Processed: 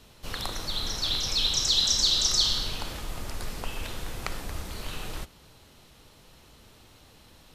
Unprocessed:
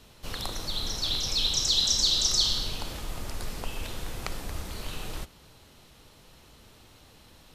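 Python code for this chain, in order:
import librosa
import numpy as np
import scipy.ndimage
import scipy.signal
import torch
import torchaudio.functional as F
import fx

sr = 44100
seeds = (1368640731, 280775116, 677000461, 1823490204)

y = fx.dynamic_eq(x, sr, hz=1600.0, q=0.88, threshold_db=-45.0, ratio=4.0, max_db=4)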